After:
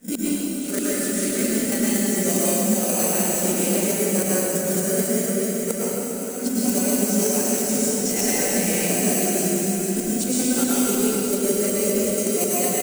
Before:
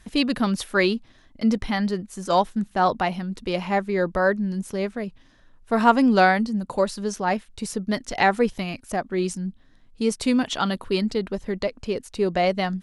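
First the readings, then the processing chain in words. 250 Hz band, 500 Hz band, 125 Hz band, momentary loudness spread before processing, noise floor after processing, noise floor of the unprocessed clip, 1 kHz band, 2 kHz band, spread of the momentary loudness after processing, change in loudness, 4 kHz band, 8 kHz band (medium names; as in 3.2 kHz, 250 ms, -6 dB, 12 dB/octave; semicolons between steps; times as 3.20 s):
+2.0 dB, +1.5 dB, +1.5 dB, 11 LU, -27 dBFS, -55 dBFS, -9.0 dB, -4.5 dB, 5 LU, +3.0 dB, +1.0 dB, +20.0 dB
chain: phase randomisation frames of 100 ms; level-controlled noise filter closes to 2.3 kHz, open at -15.5 dBFS; trance gate ".xxxxxxxx.x." 192 bpm -12 dB; in parallel at -4 dB: sample-and-hold 25×; on the sum: graphic EQ 125/250/500/1000/2000/4000/8000 Hz +4/+10/+7/-12/-3/-11/+11 dB; on a send: feedback delay 449 ms, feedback 32%, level -18.5 dB; on the sum: inverted gate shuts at -5 dBFS, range -37 dB; tilt EQ +4.5 dB/octave; compression 6:1, threshold -33 dBFS, peak gain reduction 20.5 dB; plate-style reverb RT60 4.1 s, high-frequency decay 0.75×, pre-delay 95 ms, DRR -8.5 dB; trim +8 dB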